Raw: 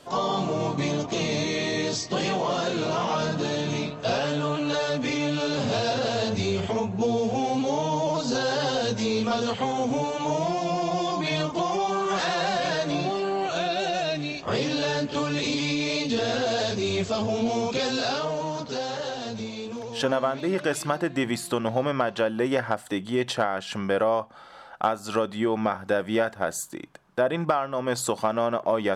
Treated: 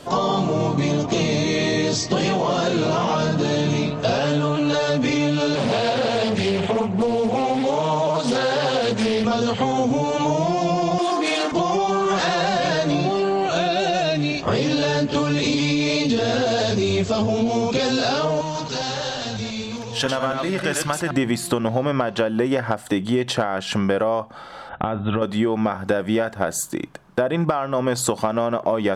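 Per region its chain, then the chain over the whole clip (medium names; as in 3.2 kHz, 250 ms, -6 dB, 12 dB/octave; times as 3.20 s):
5.55–9.25 s: cabinet simulation 170–9500 Hz, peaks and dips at 300 Hz -8 dB, 2.4 kHz +3 dB, 5.5 kHz -8 dB + loudspeaker Doppler distortion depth 0.42 ms
10.98–11.52 s: comb filter that takes the minimum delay 2.8 ms + brick-wall FIR band-pass 180–10000 Hz
18.41–21.11 s: chunks repeated in reverse 137 ms, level -5 dB + peaking EQ 350 Hz -10 dB 2.9 oct
24.69–25.22 s: peaking EQ 80 Hz +11.5 dB 2.8 oct + compression, threshold -26 dBFS + brick-wall FIR low-pass 3.9 kHz
whole clip: bass shelf 380 Hz +5 dB; compression, threshold -25 dBFS; trim +8 dB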